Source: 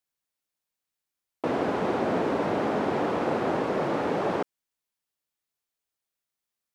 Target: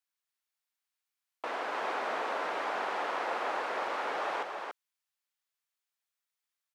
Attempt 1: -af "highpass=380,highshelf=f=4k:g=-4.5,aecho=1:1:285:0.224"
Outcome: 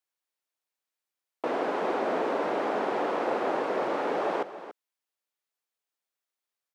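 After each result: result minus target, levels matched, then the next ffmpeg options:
echo-to-direct -8.5 dB; 500 Hz band +4.0 dB
-af "highpass=380,highshelf=f=4k:g=-4.5,aecho=1:1:285:0.596"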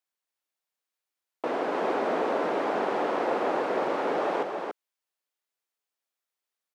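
500 Hz band +4.0 dB
-af "highpass=1k,highshelf=f=4k:g=-4.5,aecho=1:1:285:0.596"

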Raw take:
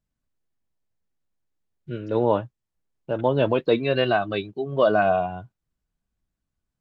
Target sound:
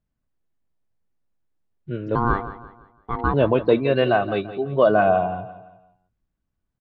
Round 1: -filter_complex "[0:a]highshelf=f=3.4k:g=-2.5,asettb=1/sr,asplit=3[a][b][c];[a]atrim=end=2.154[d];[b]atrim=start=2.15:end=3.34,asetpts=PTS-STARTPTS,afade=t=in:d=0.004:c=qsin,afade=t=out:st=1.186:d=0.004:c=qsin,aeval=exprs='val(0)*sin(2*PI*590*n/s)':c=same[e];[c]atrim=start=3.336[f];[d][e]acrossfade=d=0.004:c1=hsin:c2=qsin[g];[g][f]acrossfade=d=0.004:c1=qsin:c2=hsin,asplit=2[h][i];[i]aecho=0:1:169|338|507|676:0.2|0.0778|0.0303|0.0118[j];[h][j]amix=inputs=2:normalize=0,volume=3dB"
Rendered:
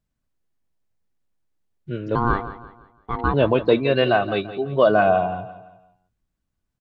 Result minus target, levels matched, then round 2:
4000 Hz band +4.0 dB
-filter_complex "[0:a]highshelf=f=3.4k:g=-12.5,asettb=1/sr,asplit=3[a][b][c];[a]atrim=end=2.154[d];[b]atrim=start=2.15:end=3.34,asetpts=PTS-STARTPTS,afade=t=in:d=0.004:c=qsin,afade=t=out:st=1.186:d=0.004:c=qsin,aeval=exprs='val(0)*sin(2*PI*590*n/s)':c=same[e];[c]atrim=start=3.336[f];[d][e]acrossfade=d=0.004:c1=hsin:c2=qsin[g];[g][f]acrossfade=d=0.004:c1=qsin:c2=hsin,asplit=2[h][i];[i]aecho=0:1:169|338|507|676:0.2|0.0778|0.0303|0.0118[j];[h][j]amix=inputs=2:normalize=0,volume=3dB"

